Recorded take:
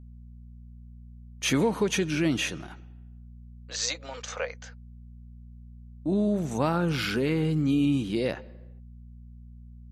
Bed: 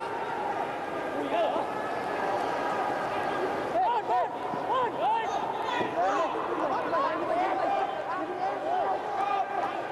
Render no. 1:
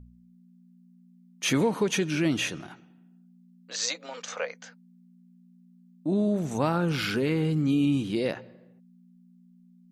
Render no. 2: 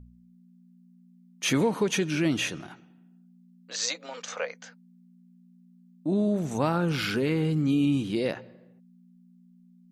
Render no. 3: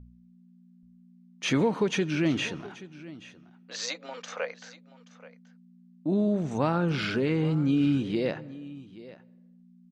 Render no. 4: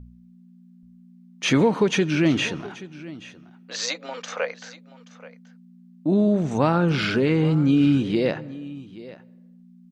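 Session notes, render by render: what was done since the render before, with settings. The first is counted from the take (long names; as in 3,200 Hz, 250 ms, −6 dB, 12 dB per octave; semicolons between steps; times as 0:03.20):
hum removal 60 Hz, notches 2
no processing that can be heard
high-frequency loss of the air 100 metres; single-tap delay 829 ms −18 dB
level +6 dB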